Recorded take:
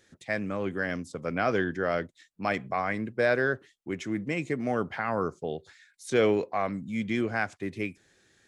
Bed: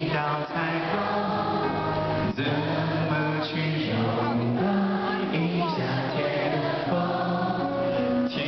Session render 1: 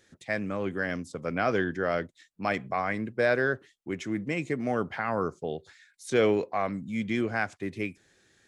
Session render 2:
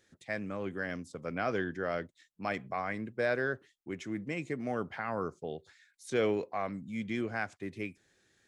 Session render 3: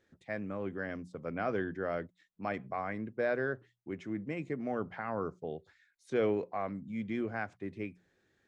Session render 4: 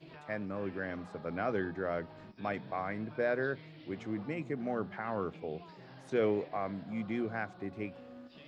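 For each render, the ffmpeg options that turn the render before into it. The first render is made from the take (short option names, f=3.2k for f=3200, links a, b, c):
-af anull
-af "volume=-6dB"
-af "lowpass=f=1.5k:p=1,bandreject=f=60:t=h:w=6,bandreject=f=120:t=h:w=6,bandreject=f=180:t=h:w=6"
-filter_complex "[1:a]volume=-26dB[a];[0:a][a]amix=inputs=2:normalize=0"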